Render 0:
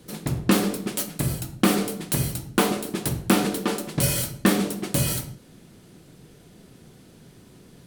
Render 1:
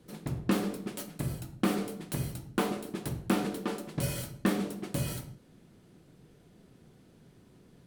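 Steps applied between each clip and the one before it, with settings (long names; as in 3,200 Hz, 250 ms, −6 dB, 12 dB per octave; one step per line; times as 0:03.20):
high-shelf EQ 3,000 Hz −7 dB
level −8 dB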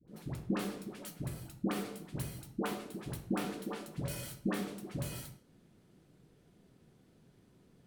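all-pass dispersion highs, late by 79 ms, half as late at 740 Hz
level −6 dB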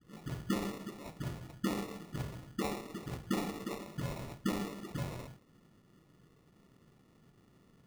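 decimation without filtering 28×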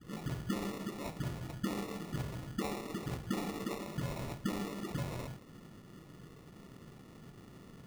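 downward compressor 2.5 to 1, threshold −50 dBFS, peak gain reduction 14.5 dB
level +10.5 dB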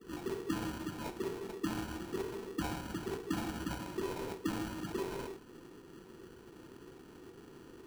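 frequency inversion band by band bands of 500 Hz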